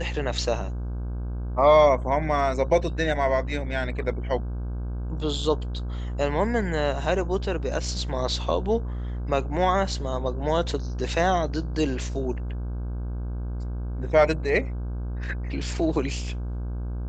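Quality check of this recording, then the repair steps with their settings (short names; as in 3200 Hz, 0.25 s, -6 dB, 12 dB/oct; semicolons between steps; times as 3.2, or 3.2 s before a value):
buzz 60 Hz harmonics 27 -30 dBFS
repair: de-hum 60 Hz, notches 27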